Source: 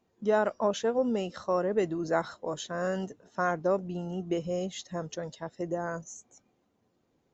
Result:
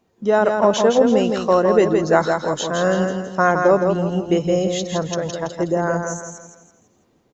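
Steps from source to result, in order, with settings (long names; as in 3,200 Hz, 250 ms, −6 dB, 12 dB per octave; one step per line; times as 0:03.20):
automatic gain control gain up to 4 dB
on a send: repeating echo 165 ms, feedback 39%, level −5 dB
on the sum: level +8 dB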